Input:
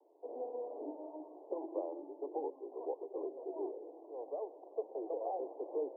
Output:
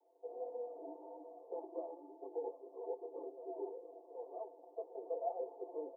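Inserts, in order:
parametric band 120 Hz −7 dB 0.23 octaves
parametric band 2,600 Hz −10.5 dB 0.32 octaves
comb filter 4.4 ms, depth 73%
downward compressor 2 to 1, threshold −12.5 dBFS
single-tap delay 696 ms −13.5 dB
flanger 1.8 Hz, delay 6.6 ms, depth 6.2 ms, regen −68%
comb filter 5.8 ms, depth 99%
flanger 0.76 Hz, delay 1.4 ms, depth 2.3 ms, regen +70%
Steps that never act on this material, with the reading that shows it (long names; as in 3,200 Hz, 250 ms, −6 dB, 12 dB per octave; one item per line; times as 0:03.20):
parametric band 120 Hz: nothing at its input below 250 Hz
parametric band 2,600 Hz: nothing at its input above 1,100 Hz
downward compressor, threshold −12.5 dBFS: peak of its input −22.0 dBFS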